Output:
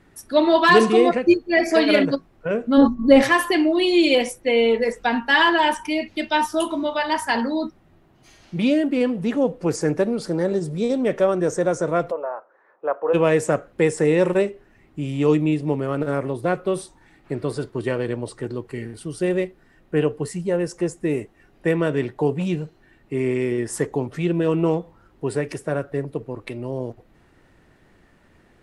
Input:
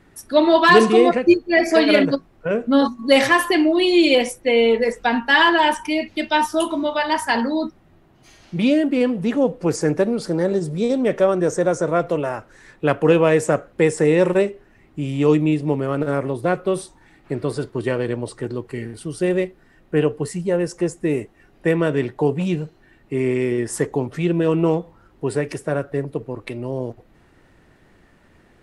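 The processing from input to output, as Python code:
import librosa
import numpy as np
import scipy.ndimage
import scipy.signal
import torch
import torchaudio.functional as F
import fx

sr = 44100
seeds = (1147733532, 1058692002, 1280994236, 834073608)

y = fx.tilt_eq(x, sr, slope=-4.0, at=(2.77, 3.21), fade=0.02)
y = fx.cheby1_bandpass(y, sr, low_hz=520.0, high_hz=1200.0, order=2, at=(12.1, 13.13), fade=0.02)
y = F.gain(torch.from_numpy(y), -2.0).numpy()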